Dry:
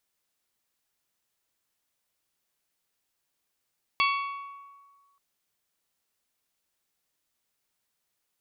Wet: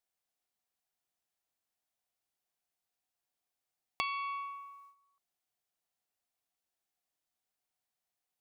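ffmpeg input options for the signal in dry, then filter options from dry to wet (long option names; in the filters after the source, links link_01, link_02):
-f lavfi -i "aevalsrc='0.0794*pow(10,-3*t/1.59)*sin(2*PI*1120*t)+0.0596*pow(10,-3*t/0.979)*sin(2*PI*2240*t)+0.0447*pow(10,-3*t/0.861)*sin(2*PI*2688*t)+0.0335*pow(10,-3*t/0.737)*sin(2*PI*3360*t)+0.0251*pow(10,-3*t/0.602)*sin(2*PI*4480*t)':duration=1.18:sample_rate=44100"
-af "agate=range=-10dB:threshold=-59dB:ratio=16:detection=peak,equalizer=frequency=730:width=5.2:gain=10.5,acompressor=threshold=-33dB:ratio=6"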